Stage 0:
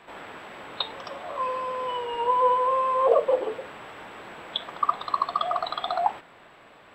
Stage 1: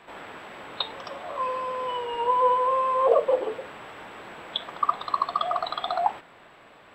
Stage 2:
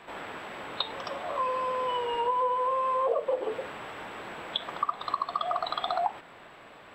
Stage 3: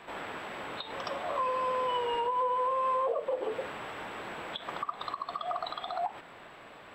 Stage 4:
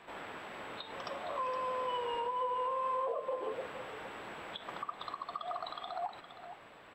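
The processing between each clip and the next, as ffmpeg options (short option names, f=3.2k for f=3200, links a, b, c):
-af anull
-af "acompressor=threshold=-27dB:ratio=4,volume=1.5dB"
-af "alimiter=limit=-22.5dB:level=0:latency=1:release=135"
-af "aecho=1:1:465:0.282,volume=-5.5dB"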